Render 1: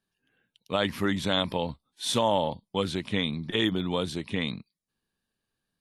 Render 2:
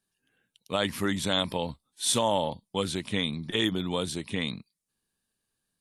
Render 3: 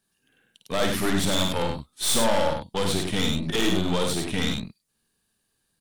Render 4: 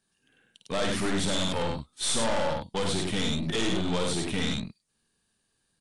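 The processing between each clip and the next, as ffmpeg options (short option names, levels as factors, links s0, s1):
-af "equalizer=f=9100:t=o:w=1.2:g=10.5,volume=0.841"
-af "aeval=exprs='(tanh(31.6*val(0)+0.65)-tanh(0.65))/31.6':c=same,aecho=1:1:52.48|96.21:0.562|0.562,volume=2.82"
-af "asoftclip=type=tanh:threshold=0.0841,aresample=22050,aresample=44100"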